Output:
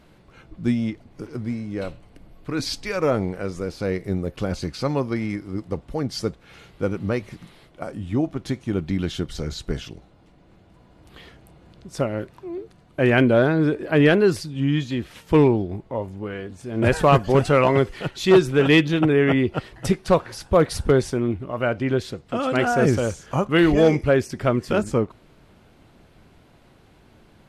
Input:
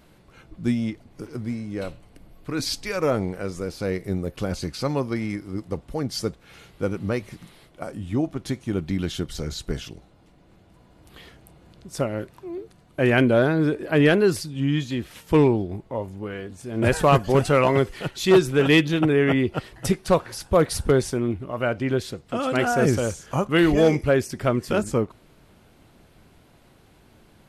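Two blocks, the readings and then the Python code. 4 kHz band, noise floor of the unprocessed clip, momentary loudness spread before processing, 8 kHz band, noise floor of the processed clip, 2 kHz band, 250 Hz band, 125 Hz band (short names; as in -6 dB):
0.0 dB, -55 dBFS, 15 LU, -3.0 dB, -54 dBFS, +1.0 dB, +1.5 dB, +1.5 dB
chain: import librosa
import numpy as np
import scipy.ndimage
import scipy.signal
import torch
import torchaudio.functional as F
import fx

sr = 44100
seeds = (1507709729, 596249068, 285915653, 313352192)

y = fx.high_shelf(x, sr, hz=8400.0, db=-10.5)
y = y * 10.0 ** (1.5 / 20.0)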